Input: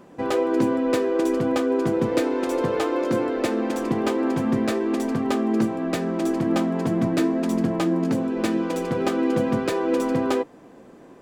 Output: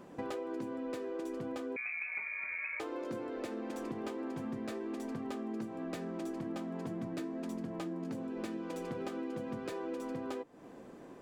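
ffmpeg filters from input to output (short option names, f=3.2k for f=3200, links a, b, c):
-filter_complex "[0:a]acompressor=threshold=-33dB:ratio=6,asettb=1/sr,asplit=3[a][b][c];[a]atrim=end=1.764[d];[b]atrim=start=1.76:end=2.8,asetpts=PTS-STARTPTS,afade=t=in:d=0.004:c=qsin,afade=t=out:st=1.036:d=0.004:c=qsin,lowpass=f=2.3k:t=q:w=0.5098,lowpass=f=2.3k:t=q:w=0.6013,lowpass=f=2.3k:t=q:w=0.9,lowpass=f=2.3k:t=q:w=2.563,afreqshift=-2700[e];[c]atrim=start=2.796[f];[d][e]acrossfade=d=0.004:c1=hsin:c2=qsin[g];[g][f]acrossfade=d=0.004:c1=qsin:c2=hsin,volume=-4.5dB"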